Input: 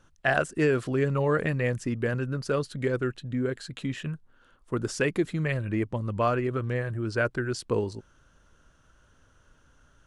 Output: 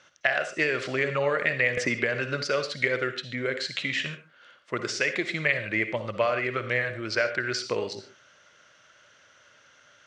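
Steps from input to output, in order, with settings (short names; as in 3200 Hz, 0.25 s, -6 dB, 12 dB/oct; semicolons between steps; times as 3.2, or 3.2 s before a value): tilt +4 dB/oct; compressor 12:1, threshold -28 dBFS, peak gain reduction 11.5 dB; speaker cabinet 110–5300 Hz, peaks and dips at 120 Hz +4 dB, 270 Hz -3 dB, 590 Hz +8 dB, 970 Hz -3 dB, 2100 Hz +10 dB; on a send at -9 dB: reverb, pre-delay 46 ms; 1.77–2.44 on the sum: three-band squash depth 100%; gain +4 dB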